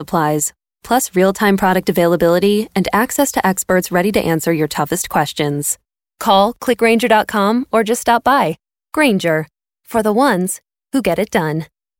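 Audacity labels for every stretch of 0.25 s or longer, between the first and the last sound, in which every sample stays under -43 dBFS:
0.510000	0.840000	silence
5.760000	6.200000	silence
8.550000	8.940000	silence
9.480000	9.870000	silence
10.590000	10.930000	silence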